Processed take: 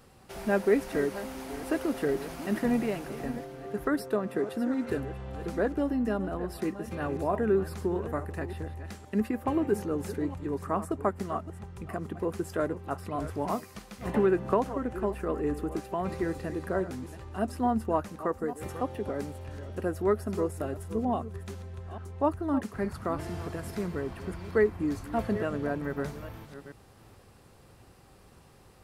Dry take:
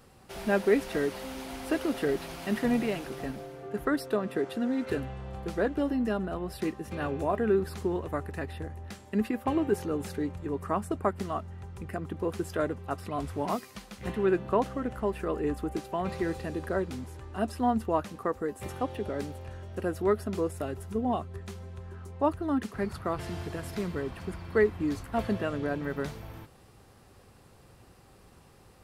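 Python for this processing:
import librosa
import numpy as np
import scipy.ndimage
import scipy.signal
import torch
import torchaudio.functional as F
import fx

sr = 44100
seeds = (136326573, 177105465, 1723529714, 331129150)

y = fx.reverse_delay(x, sr, ms=431, wet_db=-13.0)
y = fx.dynamic_eq(y, sr, hz=3400.0, q=1.2, threshold_db=-53.0, ratio=4.0, max_db=-6)
y = fx.band_squash(y, sr, depth_pct=100, at=(14.14, 14.65))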